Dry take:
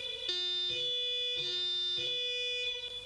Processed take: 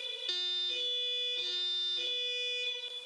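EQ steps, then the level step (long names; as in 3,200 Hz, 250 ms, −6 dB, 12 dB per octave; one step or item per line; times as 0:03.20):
high-pass filter 410 Hz 12 dB per octave
0.0 dB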